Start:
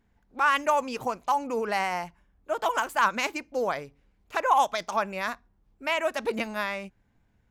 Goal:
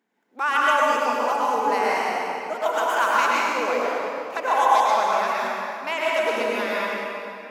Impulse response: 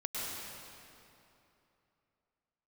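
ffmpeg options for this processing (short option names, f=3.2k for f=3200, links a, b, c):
-filter_complex "[0:a]highpass=f=250:w=0.5412,highpass=f=250:w=1.3066[a];[1:a]atrim=start_sample=2205[b];[a][b]afir=irnorm=-1:irlink=0,volume=1.5dB"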